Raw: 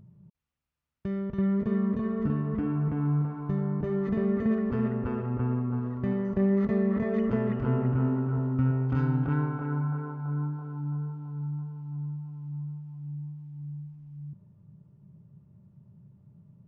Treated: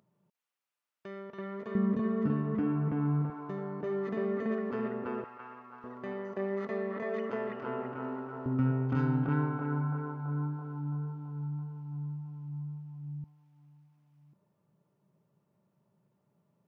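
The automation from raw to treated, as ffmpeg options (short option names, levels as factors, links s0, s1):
-af "asetnsamples=n=441:p=0,asendcmd='1.75 highpass f 160;3.3 highpass f 340;5.24 highpass f 1100;5.84 highpass f 480;8.46 highpass f 150;13.24 highpass f 490',highpass=540"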